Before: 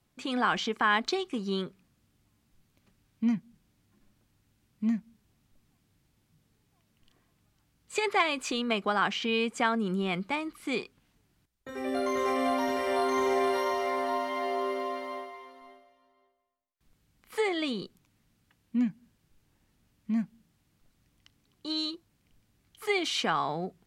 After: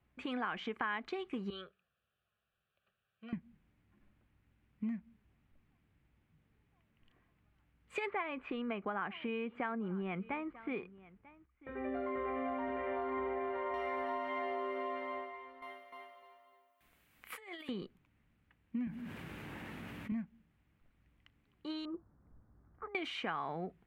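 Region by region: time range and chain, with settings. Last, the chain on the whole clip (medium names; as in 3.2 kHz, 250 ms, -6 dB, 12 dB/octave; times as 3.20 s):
1.50–3.33 s: high-pass 710 Hz 6 dB/octave + static phaser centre 1.4 kHz, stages 8
8.10–13.74 s: distance through air 450 m + delay 942 ms -23 dB
15.62–17.69 s: RIAA curve recording + feedback delay 302 ms, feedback 23%, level -3 dB + compressor with a negative ratio -38 dBFS, ratio -0.5
18.87–20.12 s: high-pass 160 Hz + modulation noise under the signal 34 dB + level flattener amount 70%
21.85–22.95 s: steep low-pass 1.4 kHz + compressor with a negative ratio -41 dBFS
whole clip: peaking EQ 65 Hz +14.5 dB 0.23 oct; compression, threshold -31 dBFS; resonant high shelf 3.5 kHz -14 dB, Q 1.5; trim -4 dB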